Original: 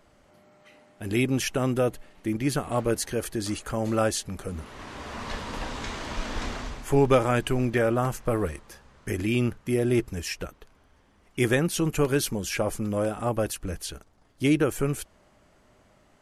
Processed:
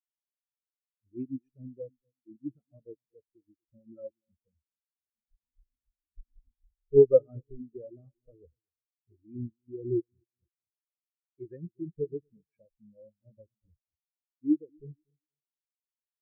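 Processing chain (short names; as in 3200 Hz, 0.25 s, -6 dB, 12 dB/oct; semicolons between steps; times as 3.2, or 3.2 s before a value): dark delay 0.24 s, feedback 50%, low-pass 540 Hz, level -9.5 dB; rotary speaker horn 8 Hz, later 0.7 Hz, at 5.92; spectral expander 4:1; gain -1.5 dB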